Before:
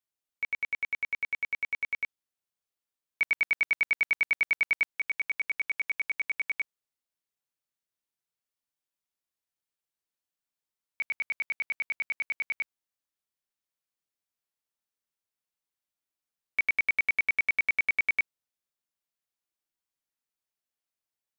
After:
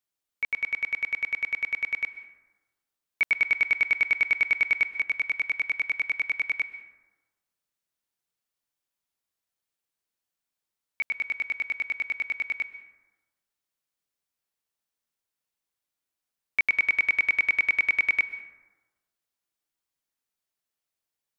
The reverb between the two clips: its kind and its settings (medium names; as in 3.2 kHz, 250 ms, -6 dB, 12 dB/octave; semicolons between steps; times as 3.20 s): plate-style reverb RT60 1.2 s, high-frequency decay 0.4×, pre-delay 115 ms, DRR 13 dB; trim +3 dB